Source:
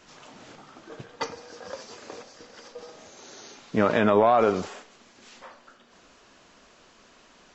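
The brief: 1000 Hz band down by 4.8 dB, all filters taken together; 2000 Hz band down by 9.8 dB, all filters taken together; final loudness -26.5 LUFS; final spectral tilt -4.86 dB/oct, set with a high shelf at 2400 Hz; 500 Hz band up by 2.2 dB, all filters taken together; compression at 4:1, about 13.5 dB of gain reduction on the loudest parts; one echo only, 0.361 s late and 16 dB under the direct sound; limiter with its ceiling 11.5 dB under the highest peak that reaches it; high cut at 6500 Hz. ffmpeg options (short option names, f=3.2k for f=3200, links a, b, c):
-af "lowpass=6.5k,equalizer=f=500:t=o:g=5.5,equalizer=f=1k:t=o:g=-8,equalizer=f=2k:t=o:g=-8.5,highshelf=f=2.4k:g=-4,acompressor=threshold=-31dB:ratio=4,alimiter=level_in=7.5dB:limit=-24dB:level=0:latency=1,volume=-7.5dB,aecho=1:1:361:0.158,volume=18dB"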